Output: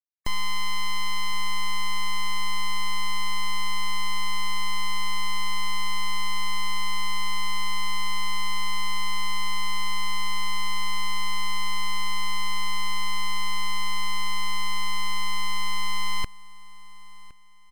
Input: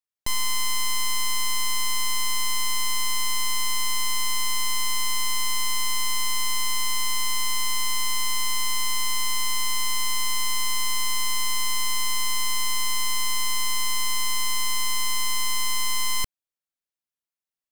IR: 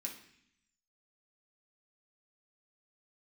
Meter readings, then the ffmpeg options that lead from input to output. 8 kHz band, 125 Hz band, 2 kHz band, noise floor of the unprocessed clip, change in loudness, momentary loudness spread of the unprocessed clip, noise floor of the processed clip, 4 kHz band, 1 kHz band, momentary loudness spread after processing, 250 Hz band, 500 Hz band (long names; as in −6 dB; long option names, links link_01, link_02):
−12.5 dB, can't be measured, −0.5 dB, below −85 dBFS, −4.5 dB, 0 LU, −38 dBFS, −4.0 dB, +1.0 dB, 0 LU, +4.5 dB, −2.0 dB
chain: -filter_complex "[0:a]acrossover=split=3100[link_01][link_02];[link_02]acompressor=threshold=-34dB:ratio=4:attack=1:release=60[link_03];[link_01][link_03]amix=inputs=2:normalize=0,afftfilt=real='re*gte(hypot(re,im),0.00708)':imag='im*gte(hypot(re,im),0.00708)':win_size=1024:overlap=0.75,highshelf=frequency=9500:gain=5.5,volume=23.5dB,asoftclip=hard,volume=-23.5dB,asplit=2[link_04][link_05];[link_05]aecho=0:1:1063|2126|3189:0.0891|0.0303|0.0103[link_06];[link_04][link_06]amix=inputs=2:normalize=0,volume=4dB"